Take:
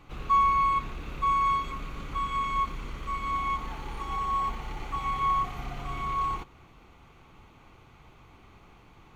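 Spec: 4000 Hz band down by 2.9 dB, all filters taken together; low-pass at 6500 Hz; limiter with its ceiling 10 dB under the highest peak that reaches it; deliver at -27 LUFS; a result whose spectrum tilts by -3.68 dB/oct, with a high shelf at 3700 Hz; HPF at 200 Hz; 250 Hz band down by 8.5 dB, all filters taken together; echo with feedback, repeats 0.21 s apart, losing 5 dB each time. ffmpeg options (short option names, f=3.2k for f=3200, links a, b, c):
-af "highpass=200,lowpass=6.5k,equalizer=f=250:t=o:g=-9,highshelf=f=3.7k:g=3.5,equalizer=f=4k:t=o:g=-5.5,alimiter=level_in=2dB:limit=-24dB:level=0:latency=1,volume=-2dB,aecho=1:1:210|420|630|840|1050|1260|1470:0.562|0.315|0.176|0.0988|0.0553|0.031|0.0173,volume=5dB"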